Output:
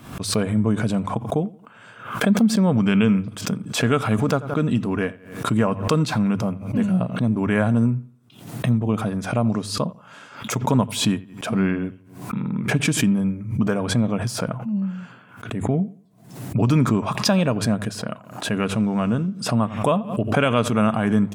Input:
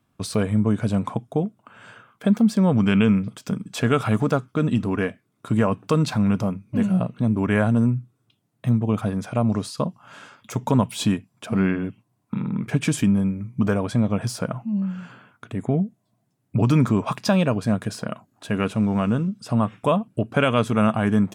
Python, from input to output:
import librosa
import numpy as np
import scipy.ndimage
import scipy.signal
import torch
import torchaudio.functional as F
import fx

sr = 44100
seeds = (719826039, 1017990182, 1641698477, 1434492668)

y = fx.hum_notches(x, sr, base_hz=50, count=2)
y = fx.echo_bbd(y, sr, ms=87, stages=2048, feedback_pct=32, wet_db=-20.0)
y = fx.pre_swell(y, sr, db_per_s=93.0)